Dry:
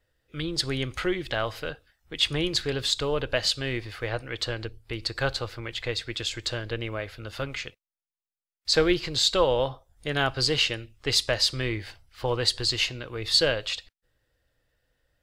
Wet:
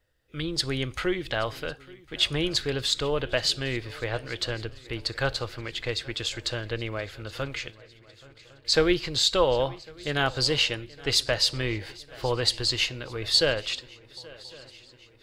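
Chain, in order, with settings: swung echo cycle 1.103 s, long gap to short 3:1, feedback 55%, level -22 dB

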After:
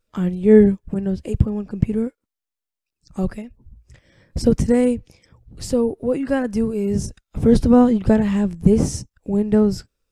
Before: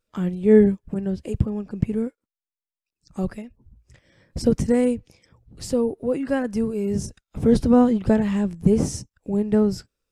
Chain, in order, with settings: low shelf 73 Hz +6.5 dB; gain +2.5 dB

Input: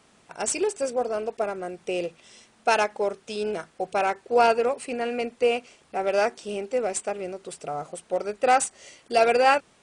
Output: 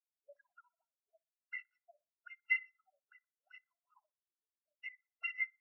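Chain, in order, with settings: FFT order left unsorted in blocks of 256 samples; low-pass opened by the level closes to 850 Hz, open at -19.5 dBFS; granular stretch 0.57×, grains 0.103 s; auto-wah 280–2000 Hz, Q 20, up, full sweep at -24 dBFS; high shelf 4300 Hz -8 dB; band-limited delay 61 ms, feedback 62%, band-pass 1100 Hz, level -11.5 dB; spectral expander 2.5:1; gain +12.5 dB

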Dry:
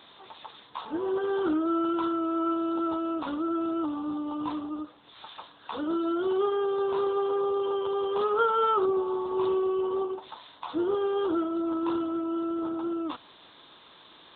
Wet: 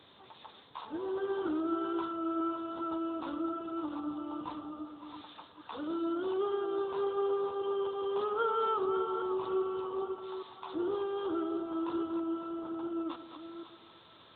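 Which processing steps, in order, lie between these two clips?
reverse delay 0.401 s, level -8 dB; split-band echo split 620 Hz, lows 0.118 s, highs 0.551 s, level -12.5 dB; band noise 75–540 Hz -60 dBFS; gain -7 dB

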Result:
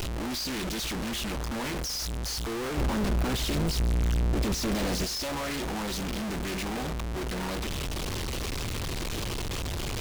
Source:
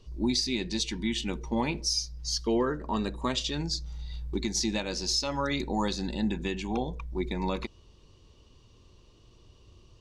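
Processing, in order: infinite clipping; 2.77–5.05 low shelf 410 Hz +8.5 dB; Doppler distortion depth 0.95 ms

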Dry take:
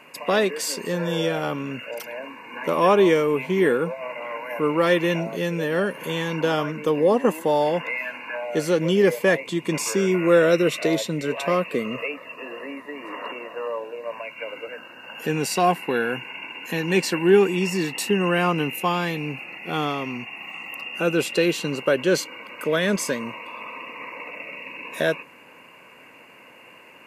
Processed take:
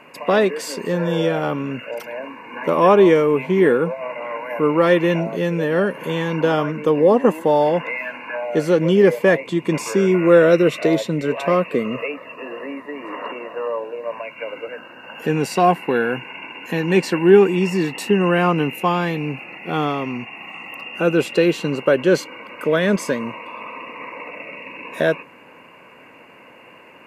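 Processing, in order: high shelf 2900 Hz -10.5 dB; gain +5 dB

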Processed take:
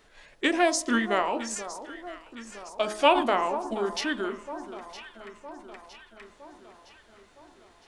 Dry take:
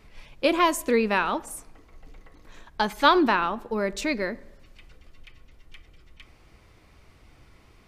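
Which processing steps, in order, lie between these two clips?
tone controls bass -14 dB, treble +12 dB; formant shift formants -5 st; high shelf 2800 Hz -9 dB; de-hum 53.03 Hz, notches 25; on a send: echo with dull and thin repeats by turns 0.481 s, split 1300 Hz, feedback 72%, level -12 dB

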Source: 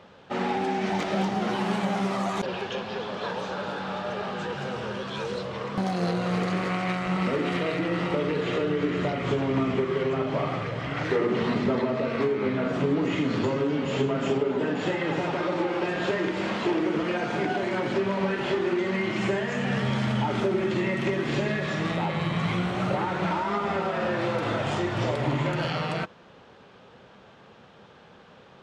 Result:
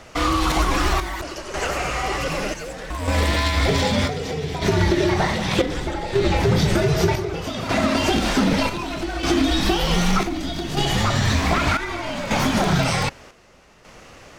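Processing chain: frequency shift -220 Hz; wide varispeed 1.99×; chopper 0.65 Hz, depth 60%, duty 65%; gain +7.5 dB

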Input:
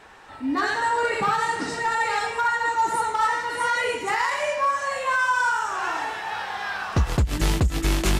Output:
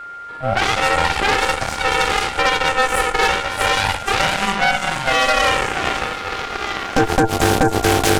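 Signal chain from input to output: ring modulator 390 Hz; added harmonics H 6 -7 dB, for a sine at -11 dBFS; whine 1400 Hz -35 dBFS; gain +4.5 dB

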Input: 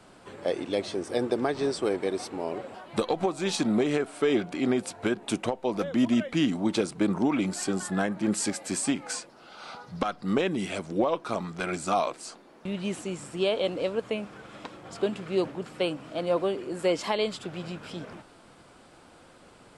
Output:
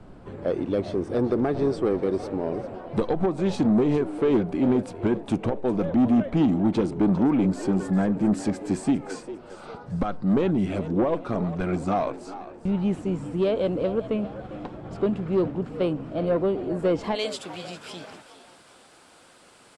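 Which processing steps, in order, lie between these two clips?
tilt -4 dB/oct, from 17.14 s +2 dB/oct; soft clip -15 dBFS, distortion -14 dB; frequency-shifting echo 0.401 s, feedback 42%, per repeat +90 Hz, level -14.5 dB

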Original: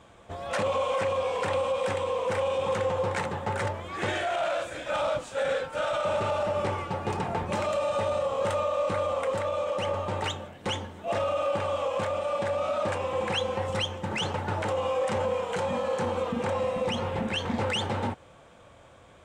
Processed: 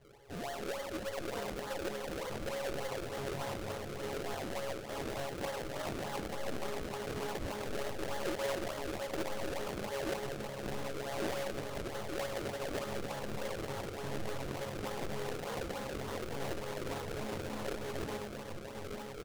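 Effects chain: median filter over 41 samples; flange 0.27 Hz, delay 8.3 ms, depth 1.4 ms, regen +78%; resonator bank C#3 fifth, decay 0.41 s; flange 0.12 Hz, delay 1.9 ms, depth 7.6 ms, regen -29%; comb 2.3 ms, depth 44%; in parallel at 0 dB: negative-ratio compressor -60 dBFS, ratio -0.5; on the sum: high shelf 4000 Hz -9 dB; diffused feedback echo 0.851 s, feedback 62%, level -4.5 dB; decimation with a swept rate 34×, swing 100% 3.4 Hz; on a send at -16.5 dB: reverb RT60 0.50 s, pre-delay 5 ms; on the sum: Doppler distortion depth 0.68 ms; gain +12 dB

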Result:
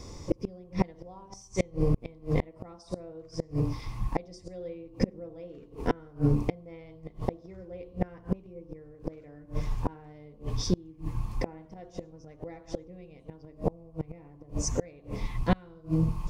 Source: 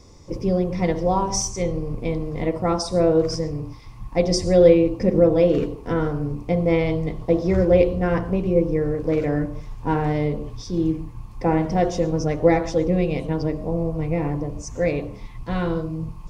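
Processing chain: flipped gate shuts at -16 dBFS, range -31 dB; gain +4 dB

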